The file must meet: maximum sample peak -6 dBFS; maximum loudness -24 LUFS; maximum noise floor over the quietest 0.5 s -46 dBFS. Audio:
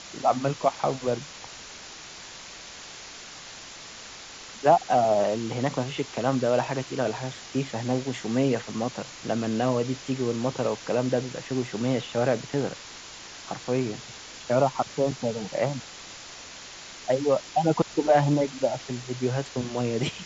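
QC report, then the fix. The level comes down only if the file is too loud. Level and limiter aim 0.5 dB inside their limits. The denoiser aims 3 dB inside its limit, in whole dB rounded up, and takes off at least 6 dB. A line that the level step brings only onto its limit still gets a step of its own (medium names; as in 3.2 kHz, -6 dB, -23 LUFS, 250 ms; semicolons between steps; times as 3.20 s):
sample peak -7.5 dBFS: pass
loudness -27.0 LUFS: pass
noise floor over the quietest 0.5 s -43 dBFS: fail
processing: noise reduction 6 dB, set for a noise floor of -43 dBFS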